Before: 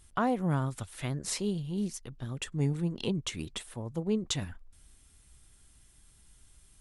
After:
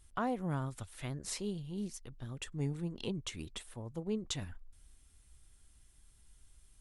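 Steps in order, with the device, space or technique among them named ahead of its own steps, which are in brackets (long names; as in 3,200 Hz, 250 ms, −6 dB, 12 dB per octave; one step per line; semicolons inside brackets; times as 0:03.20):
low shelf boost with a cut just above (low-shelf EQ 67 Hz +6.5 dB; parametric band 160 Hz −2.5 dB 0.96 octaves)
level −6 dB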